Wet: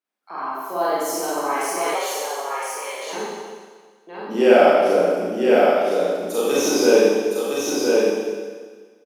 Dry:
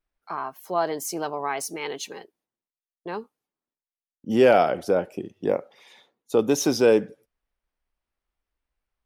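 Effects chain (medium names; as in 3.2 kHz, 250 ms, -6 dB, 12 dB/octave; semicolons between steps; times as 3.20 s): high-pass 210 Hz 24 dB/octave; 5.50–6.53 s: tilt EQ +3.5 dB/octave; on a send: delay 1013 ms -3.5 dB; on the sum: Schroeder reverb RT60 1.6 s, combs from 30 ms, DRR -9 dB; 1.95–3.13 s: frequency shift +110 Hz; trim -4.5 dB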